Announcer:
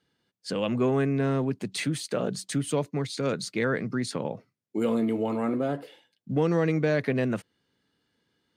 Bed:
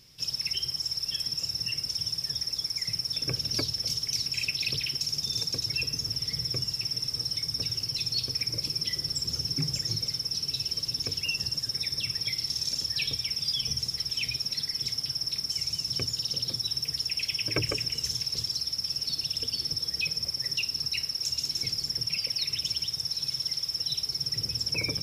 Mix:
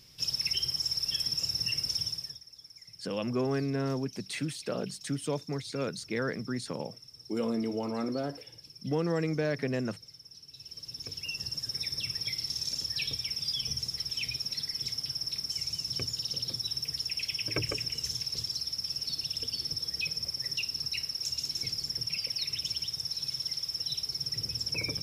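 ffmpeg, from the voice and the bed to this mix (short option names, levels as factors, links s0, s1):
-filter_complex "[0:a]adelay=2550,volume=0.531[s0];[1:a]volume=6.68,afade=t=out:st=1.95:d=0.45:silence=0.1,afade=t=in:st=10.51:d=1.29:silence=0.149624[s1];[s0][s1]amix=inputs=2:normalize=0"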